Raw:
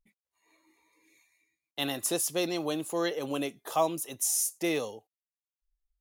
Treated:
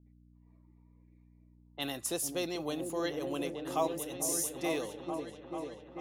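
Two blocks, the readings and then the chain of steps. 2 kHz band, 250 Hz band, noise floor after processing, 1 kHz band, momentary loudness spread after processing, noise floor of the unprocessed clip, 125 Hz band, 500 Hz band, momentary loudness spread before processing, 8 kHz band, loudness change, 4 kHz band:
-4.5 dB, -3.0 dB, -62 dBFS, -4.0 dB, 10 LU, under -85 dBFS, -2.5 dB, -3.0 dB, 7 LU, -5.0 dB, -5.0 dB, -5.0 dB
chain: delay with an opening low-pass 442 ms, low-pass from 400 Hz, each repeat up 1 oct, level -3 dB; mains buzz 60 Hz, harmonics 5, -56 dBFS -4 dB/octave; level-controlled noise filter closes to 780 Hz, open at -29 dBFS; trim -5 dB

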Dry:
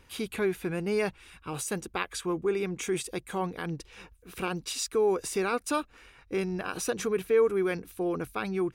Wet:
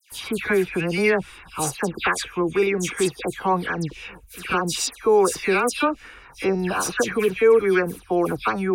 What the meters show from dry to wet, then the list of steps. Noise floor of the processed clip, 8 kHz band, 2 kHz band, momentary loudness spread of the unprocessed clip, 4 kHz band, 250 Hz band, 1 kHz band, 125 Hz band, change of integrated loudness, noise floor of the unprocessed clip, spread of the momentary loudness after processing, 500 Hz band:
-47 dBFS, +7.5 dB, +11.5 dB, 10 LU, +8.0 dB, +7.5 dB, +10.5 dB, +7.5 dB, +8.5 dB, -59 dBFS, 9 LU, +7.5 dB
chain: phase dispersion lows, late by 119 ms, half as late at 2.5 kHz; sweeping bell 0.61 Hz 770–2700 Hz +7 dB; trim +7.5 dB

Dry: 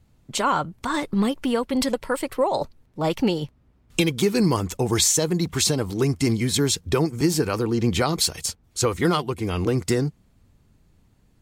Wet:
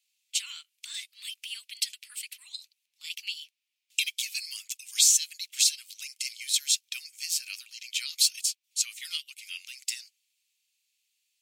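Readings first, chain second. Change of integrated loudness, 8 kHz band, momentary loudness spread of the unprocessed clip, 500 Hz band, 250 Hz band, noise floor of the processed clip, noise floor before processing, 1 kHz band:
-5.0 dB, 0.0 dB, 7 LU, under -40 dB, under -40 dB, -81 dBFS, -61 dBFS, under -35 dB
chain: elliptic high-pass 2.5 kHz, stop band 80 dB

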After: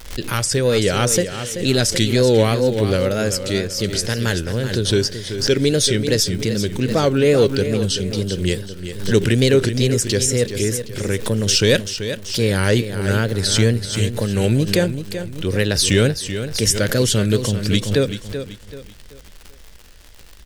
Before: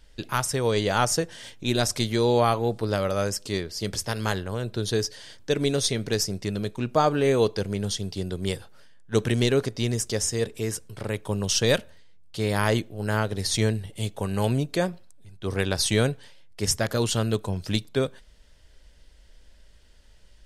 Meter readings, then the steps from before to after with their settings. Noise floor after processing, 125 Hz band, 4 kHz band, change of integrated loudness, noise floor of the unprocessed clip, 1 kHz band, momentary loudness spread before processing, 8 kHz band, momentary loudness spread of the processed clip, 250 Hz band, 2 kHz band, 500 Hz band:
-41 dBFS, +8.5 dB, +8.5 dB, +7.5 dB, -53 dBFS, -1.0 dB, 9 LU, +8.0 dB, 9 LU, +8.0 dB, +7.0 dB, +7.5 dB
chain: in parallel at -9 dB: overload inside the chain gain 19.5 dB; on the sum: wow and flutter 140 cents; high-order bell 910 Hz -10 dB 1.1 oct; crackle 130 per s -36 dBFS; on a send: feedback delay 383 ms, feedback 35%, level -10 dB; on the sum: swell ahead of each attack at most 95 dB/s; trim +5 dB

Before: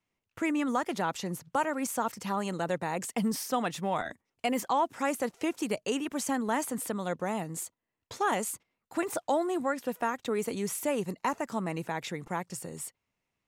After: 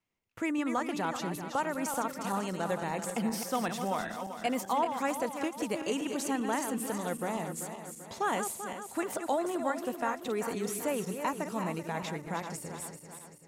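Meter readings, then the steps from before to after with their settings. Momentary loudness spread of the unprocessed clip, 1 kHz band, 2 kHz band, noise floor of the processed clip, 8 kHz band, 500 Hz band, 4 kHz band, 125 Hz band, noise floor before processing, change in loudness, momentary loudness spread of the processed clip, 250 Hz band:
7 LU, -1.0 dB, -1.5 dB, -49 dBFS, -1.5 dB, -1.5 dB, -1.5 dB, -1.0 dB, -85 dBFS, -1.5 dB, 6 LU, -1.5 dB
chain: backward echo that repeats 194 ms, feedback 68%, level -7.5 dB; endings held to a fixed fall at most 270 dB/s; trim -2.5 dB

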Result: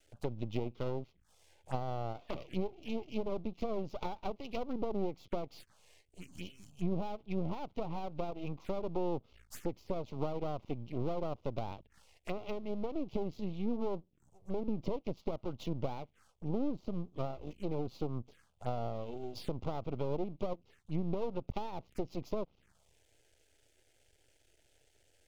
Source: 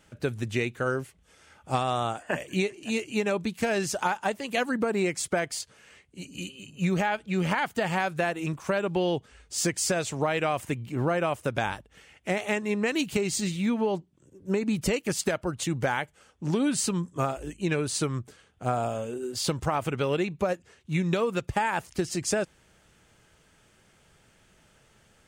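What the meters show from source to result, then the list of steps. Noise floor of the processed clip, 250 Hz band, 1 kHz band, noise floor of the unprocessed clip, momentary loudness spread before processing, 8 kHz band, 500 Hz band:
-71 dBFS, -9.5 dB, -12.5 dB, -62 dBFS, 7 LU, -29.0 dB, -9.5 dB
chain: low-pass that closes with the level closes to 880 Hz, closed at -23 dBFS; half-wave rectifier; touch-sensitive phaser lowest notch 170 Hz, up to 1.7 kHz, full sweep at -34 dBFS; trim -3.5 dB

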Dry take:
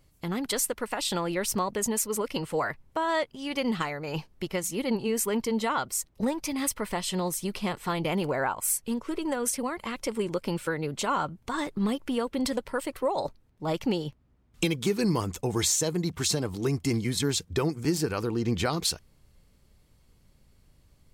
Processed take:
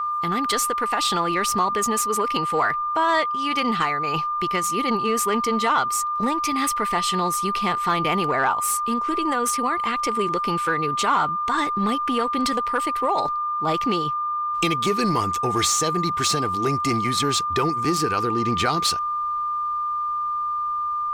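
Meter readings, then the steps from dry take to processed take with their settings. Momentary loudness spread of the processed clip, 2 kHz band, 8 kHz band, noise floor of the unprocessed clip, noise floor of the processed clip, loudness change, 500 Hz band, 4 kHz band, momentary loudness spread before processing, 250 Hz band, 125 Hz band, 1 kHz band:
4 LU, +8.0 dB, +3.0 dB, -63 dBFS, -25 dBFS, +7.0 dB, +3.0 dB, +6.5 dB, 5 LU, +2.5 dB, +1.0 dB, +14.5 dB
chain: peaking EQ 560 Hz -9.5 dB 0.23 oct; in parallel at -10 dB: wavefolder -24.5 dBFS; on the sum: whistle 1.2 kHz -29 dBFS; overdrive pedal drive 7 dB, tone 4.2 kHz, clips at -11 dBFS; trim +4 dB

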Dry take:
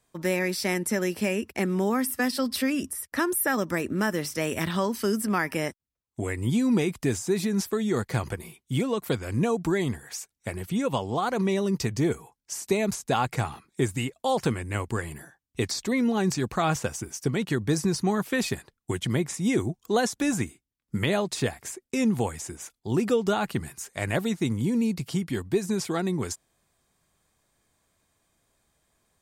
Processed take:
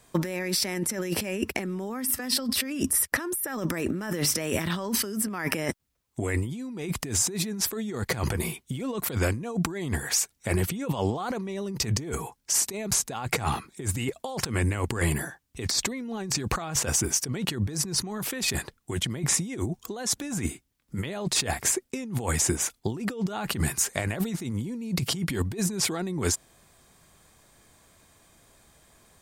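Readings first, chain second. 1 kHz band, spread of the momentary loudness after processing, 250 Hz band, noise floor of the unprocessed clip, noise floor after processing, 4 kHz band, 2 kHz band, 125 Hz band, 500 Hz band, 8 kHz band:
-4.5 dB, 8 LU, -4.5 dB, -81 dBFS, -69 dBFS, +4.5 dB, -1.5 dB, 0.0 dB, -5.5 dB, +8.0 dB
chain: compressor with a negative ratio -35 dBFS, ratio -1; trim +5.5 dB

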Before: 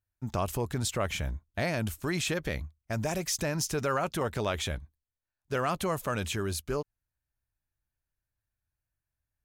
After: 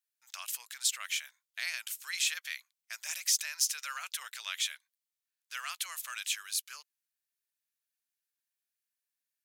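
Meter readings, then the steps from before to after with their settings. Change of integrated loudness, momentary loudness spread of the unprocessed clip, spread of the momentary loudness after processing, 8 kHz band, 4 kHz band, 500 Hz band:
-2.0 dB, 6 LU, 15 LU, +4.0 dB, +3.0 dB, under -30 dB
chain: Bessel high-pass 2.6 kHz, order 4; trim +4.5 dB

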